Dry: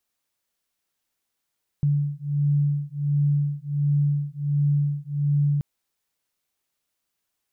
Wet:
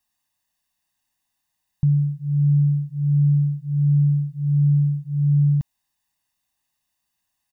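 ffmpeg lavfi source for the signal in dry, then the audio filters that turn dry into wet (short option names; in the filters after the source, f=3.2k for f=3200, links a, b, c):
-f lavfi -i "aevalsrc='0.0708*(sin(2*PI*144*t)+sin(2*PI*145.4*t))':d=3.78:s=44100"
-af "aecho=1:1:1.1:0.85"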